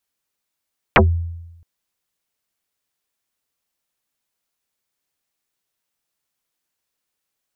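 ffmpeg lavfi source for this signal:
-f lavfi -i "aevalsrc='0.501*pow(10,-3*t/0.99)*sin(2*PI*84.4*t+11*pow(10,-3*t/0.14)*sin(2*PI*3.5*84.4*t))':d=0.67:s=44100"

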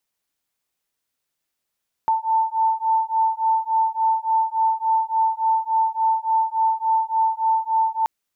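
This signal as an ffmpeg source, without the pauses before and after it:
-f lavfi -i "aevalsrc='0.0944*(sin(2*PI*889*t)+sin(2*PI*892.5*t))':d=5.98:s=44100"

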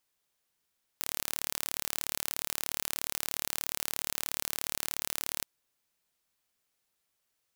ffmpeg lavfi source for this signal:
-f lavfi -i "aevalsrc='0.531*eq(mod(n,1195),0)':d=4.43:s=44100"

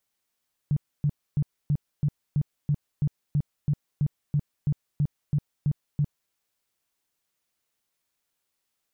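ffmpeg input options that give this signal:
-f lavfi -i "aevalsrc='0.106*sin(2*PI*146*mod(t,0.33))*lt(mod(t,0.33),8/146)':d=5.61:s=44100"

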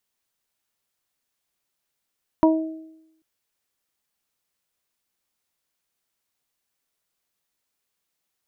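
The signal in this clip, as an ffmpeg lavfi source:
-f lavfi -i "aevalsrc='0.251*pow(10,-3*t/0.87)*sin(2*PI*319*t)+0.141*pow(10,-3*t/0.64)*sin(2*PI*638*t)+0.158*pow(10,-3*t/0.22)*sin(2*PI*957*t)':d=0.79:s=44100"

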